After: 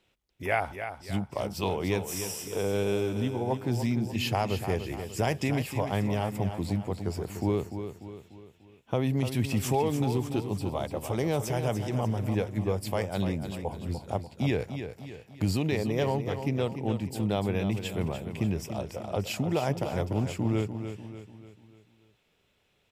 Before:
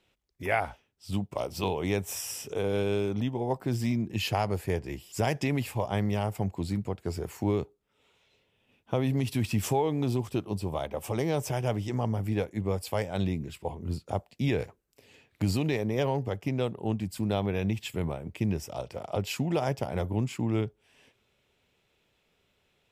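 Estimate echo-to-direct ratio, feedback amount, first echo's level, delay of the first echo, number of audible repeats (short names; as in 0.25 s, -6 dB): -8.0 dB, 46%, -9.0 dB, 0.295 s, 4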